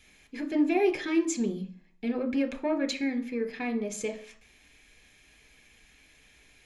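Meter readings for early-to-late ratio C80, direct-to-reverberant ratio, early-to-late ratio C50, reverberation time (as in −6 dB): 19.0 dB, 7.5 dB, 14.5 dB, 0.45 s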